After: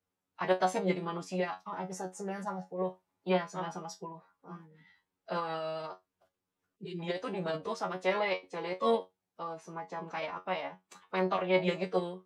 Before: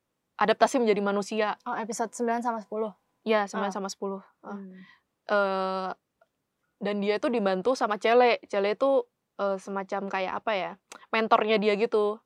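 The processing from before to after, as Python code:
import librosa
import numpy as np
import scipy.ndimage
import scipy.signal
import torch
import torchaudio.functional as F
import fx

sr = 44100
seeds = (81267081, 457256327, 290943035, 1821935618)

y = fx.comb_fb(x, sr, f0_hz=110.0, decay_s=0.18, harmonics='all', damping=0.0, mix_pct=100)
y = fx.spec_box(y, sr, start_s=6.76, length_s=0.24, low_hz=510.0, high_hz=2100.0, gain_db=-22)
y = fx.pitch_keep_formants(y, sr, semitones=-3.0)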